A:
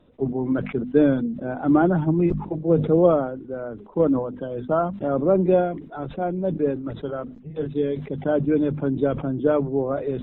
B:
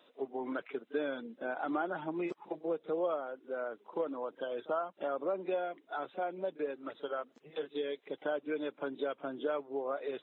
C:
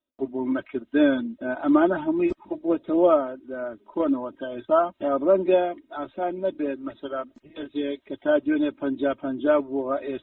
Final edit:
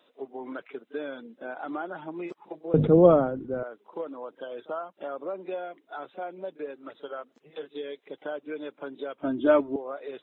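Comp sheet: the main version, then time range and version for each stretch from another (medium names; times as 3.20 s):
B
2.74–3.63 s: from A
9.22–9.76 s: from C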